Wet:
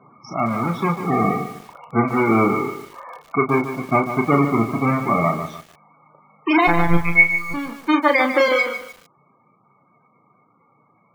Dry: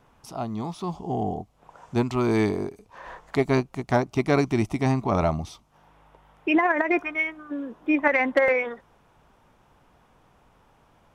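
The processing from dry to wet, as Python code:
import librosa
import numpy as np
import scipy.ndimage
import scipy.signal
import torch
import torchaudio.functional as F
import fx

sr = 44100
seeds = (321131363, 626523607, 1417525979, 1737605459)

y = fx.halfwave_hold(x, sr)
y = scipy.signal.sosfilt(scipy.signal.butter(4, 130.0, 'highpass', fs=sr, output='sos'), y)
y = fx.rider(y, sr, range_db=5, speed_s=2.0)
y = fx.small_body(y, sr, hz=(1200.0, 2200.0), ring_ms=30, db=13)
y = fx.lpc_monotone(y, sr, seeds[0], pitch_hz=170.0, order=8, at=(6.67, 7.54))
y = fx.spec_topn(y, sr, count=32)
y = fx.doubler(y, sr, ms=35.0, db=-7.0)
y = fx.echo_crushed(y, sr, ms=148, feedback_pct=35, bits=6, wet_db=-9.5)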